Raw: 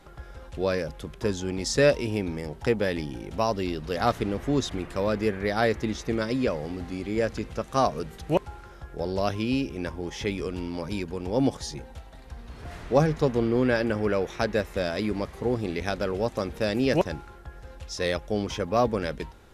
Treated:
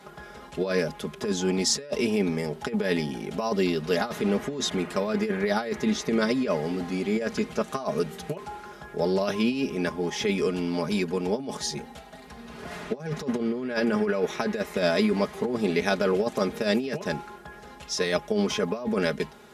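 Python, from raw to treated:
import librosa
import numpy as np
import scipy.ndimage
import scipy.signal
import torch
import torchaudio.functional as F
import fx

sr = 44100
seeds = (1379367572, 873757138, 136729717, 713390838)

y = fx.over_compress(x, sr, threshold_db=-27.0, ratio=-0.5)
y = scipy.signal.sosfilt(scipy.signal.butter(2, 150.0, 'highpass', fs=sr, output='sos'), y)
y = y + 0.72 * np.pad(y, (int(4.8 * sr / 1000.0), 0))[:len(y)]
y = F.gain(torch.from_numpy(y), 1.5).numpy()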